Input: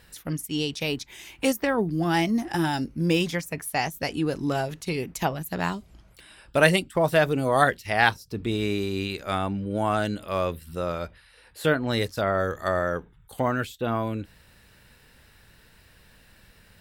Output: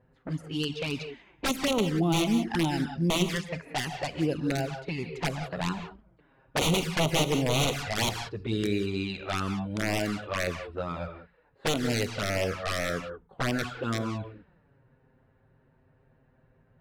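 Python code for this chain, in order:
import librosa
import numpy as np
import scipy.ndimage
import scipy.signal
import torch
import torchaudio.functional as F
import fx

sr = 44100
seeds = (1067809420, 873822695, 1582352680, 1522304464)

y = fx.highpass(x, sr, hz=72.0, slope=6)
y = fx.notch(y, sr, hz=5700.0, q=7.8)
y = (np.mod(10.0 ** (16.0 / 20.0) * y + 1.0, 2.0) - 1.0) / 10.0 ** (16.0 / 20.0)
y = fx.rev_gated(y, sr, seeds[0], gate_ms=210, shape='rising', drr_db=8.0)
y = fx.env_lowpass(y, sr, base_hz=730.0, full_db=-21.5)
y = fx.high_shelf(y, sr, hz=8100.0, db=-9.0)
y = fx.env_flanger(y, sr, rest_ms=8.1, full_db=-20.5)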